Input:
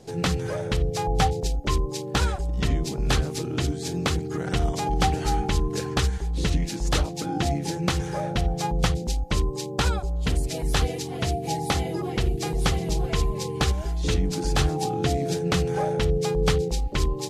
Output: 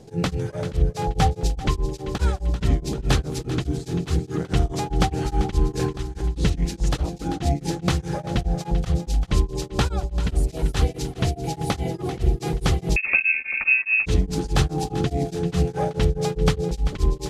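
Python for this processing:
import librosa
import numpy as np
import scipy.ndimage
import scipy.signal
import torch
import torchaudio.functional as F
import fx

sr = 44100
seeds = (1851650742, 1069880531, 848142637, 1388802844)

p1 = fx.low_shelf(x, sr, hz=450.0, db=6.0)
p2 = fx.over_compress(p1, sr, threshold_db=-25.0, ratio=-1.0, at=(5.67, 6.24))
p3 = fx.dmg_crackle(p2, sr, seeds[0], per_s=22.0, level_db=-37.0, at=(14.7, 15.13), fade=0.02)
p4 = p3 + fx.echo_feedback(p3, sr, ms=390, feedback_pct=50, wet_db=-13.0, dry=0)
p5 = fx.freq_invert(p4, sr, carrier_hz=2600, at=(12.96, 14.06))
y = p5 * np.abs(np.cos(np.pi * 4.8 * np.arange(len(p5)) / sr))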